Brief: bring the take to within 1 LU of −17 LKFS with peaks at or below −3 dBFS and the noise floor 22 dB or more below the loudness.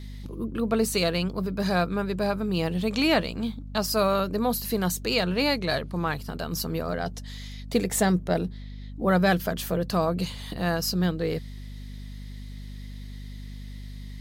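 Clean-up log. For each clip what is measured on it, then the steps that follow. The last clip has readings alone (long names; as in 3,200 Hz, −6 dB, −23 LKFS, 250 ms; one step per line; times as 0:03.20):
mains hum 50 Hz; hum harmonics up to 250 Hz; level of the hum −36 dBFS; integrated loudness −26.5 LKFS; sample peak −10.0 dBFS; target loudness −17.0 LKFS
→ mains-hum notches 50/100/150/200/250 Hz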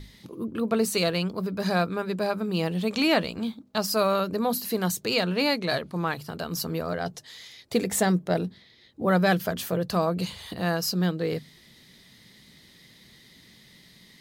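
mains hum none found; integrated loudness −26.5 LKFS; sample peak −10.5 dBFS; target loudness −17.0 LKFS
→ level +9.5 dB
brickwall limiter −3 dBFS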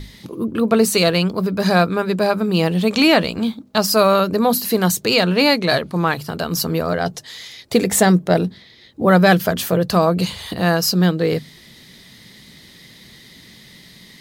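integrated loudness −17.5 LKFS; sample peak −3.0 dBFS; background noise floor −46 dBFS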